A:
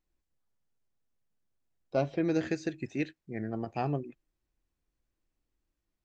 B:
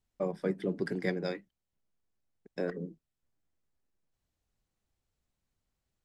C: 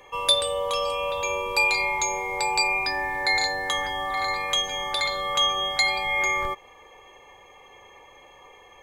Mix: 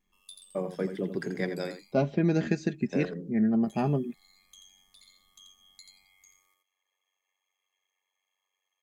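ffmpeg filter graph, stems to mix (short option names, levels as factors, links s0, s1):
-filter_complex "[0:a]equalizer=f=210:w=1.4:g=11.5,aecho=1:1:4.9:0.48,volume=1.06[s0];[1:a]adelay=350,volume=1.06,asplit=2[s1][s2];[s2]volume=0.316[s3];[2:a]aeval=exprs='val(0)*sin(2*PI*47*n/s)':c=same,acrossover=split=340|3000[s4][s5][s6];[s5]acompressor=threshold=0.0112:ratio=6[s7];[s4][s7][s6]amix=inputs=3:normalize=0,aderivative,volume=0.106,asplit=3[s8][s9][s10];[s8]atrim=end=1.93,asetpts=PTS-STARTPTS,afade=t=out:st=1.926:d=0.004:c=hsin[s11];[s9]atrim=start=1.93:end=3.65,asetpts=PTS-STARTPTS,volume=0[s12];[s10]atrim=start=3.65,asetpts=PTS-STARTPTS,afade=t=in:d=0.004:c=hsin[s13];[s11][s12][s13]concat=n=3:v=0:a=1,asplit=2[s14][s15];[s15]volume=0.596[s16];[s3][s16]amix=inputs=2:normalize=0,aecho=0:1:85:1[s17];[s0][s1][s14][s17]amix=inputs=4:normalize=0"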